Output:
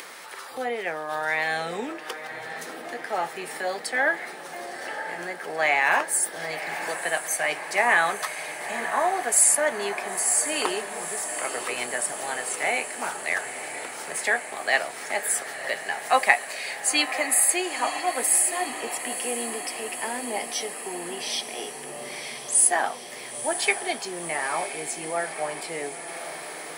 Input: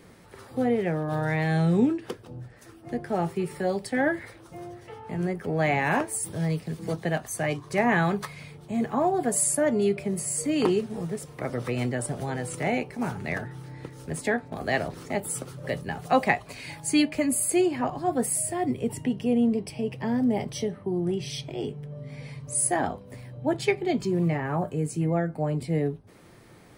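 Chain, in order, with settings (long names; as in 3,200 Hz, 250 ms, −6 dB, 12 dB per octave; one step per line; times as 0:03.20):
high-pass filter 900 Hz 12 dB per octave
upward compression, threshold −39 dBFS
on a send: feedback delay with all-pass diffusion 972 ms, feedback 71%, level −10.5 dB
on the sum: level +7 dB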